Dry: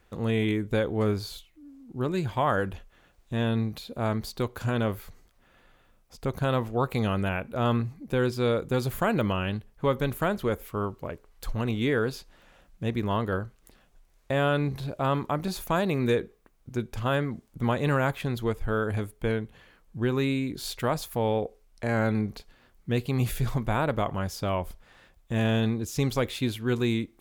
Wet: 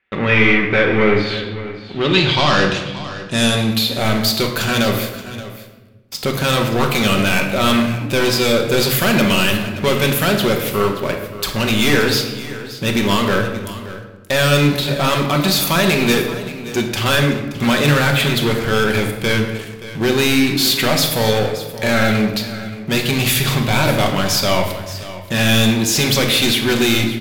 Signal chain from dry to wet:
meter weighting curve D
leveller curve on the samples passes 5
low-pass filter sweep 2,100 Hz → 15,000 Hz, 0:01.46–0:03.94
on a send: single-tap delay 576 ms −15 dB
on the sum: rectangular room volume 710 cubic metres, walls mixed, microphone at 1.1 metres
level −4 dB

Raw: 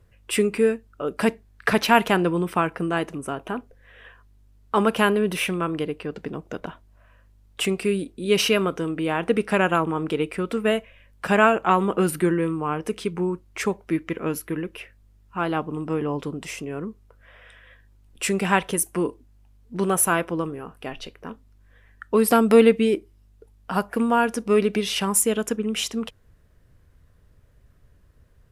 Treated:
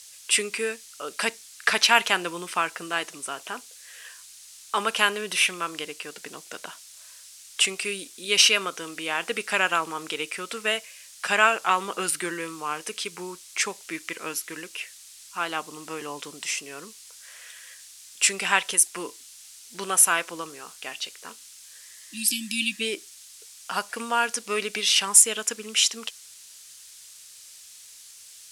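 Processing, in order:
background noise blue −49 dBFS
healed spectral selection 0:21.89–0:22.78, 330–2,300 Hz before
meter weighting curve ITU-R 468
level −3 dB

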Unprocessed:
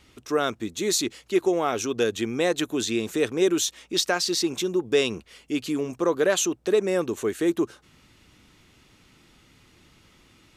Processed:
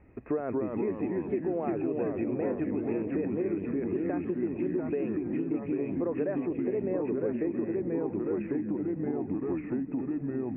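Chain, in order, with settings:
in parallel at −4.5 dB: bit reduction 7 bits
on the sum: brickwall limiter −13 dBFS, peak gain reduction 8 dB
on a send: echo through a band-pass that steps 225 ms, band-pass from 190 Hz, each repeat 0.7 octaves, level −8 dB
on the sum: delay with pitch and tempo change per echo 190 ms, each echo −2 semitones, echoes 3
tilt shelving filter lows +8 dB, about 870 Hz
downward compressor 6 to 1, threshold −24 dBFS, peak gain reduction 14.5 dB
Chebyshev low-pass with heavy ripple 2,600 Hz, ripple 6 dB

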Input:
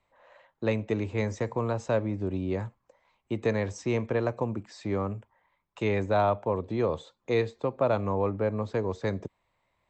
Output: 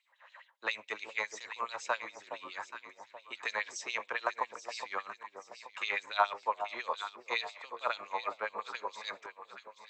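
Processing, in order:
auto-filter high-pass sine 7.2 Hz 980–4,000 Hz
delay that swaps between a low-pass and a high-pass 415 ms, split 930 Hz, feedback 63%, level −7 dB

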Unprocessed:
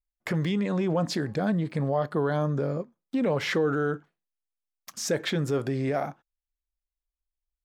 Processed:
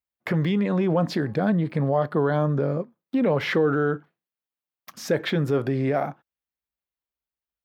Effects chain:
high-pass filter 77 Hz 24 dB per octave
parametric band 7,500 Hz −13 dB 1.2 octaves
level +4 dB

